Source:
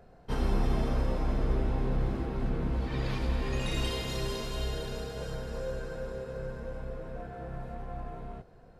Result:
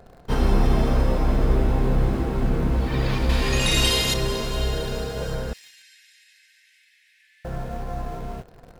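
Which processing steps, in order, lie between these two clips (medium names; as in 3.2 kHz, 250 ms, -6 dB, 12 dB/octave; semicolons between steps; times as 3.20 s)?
3.29–4.14 s: treble shelf 2.3 kHz +11 dB; 5.53–7.45 s: steep high-pass 1.8 kHz 96 dB/octave; in parallel at -8 dB: bit crusher 8-bit; on the sum: trim +6 dB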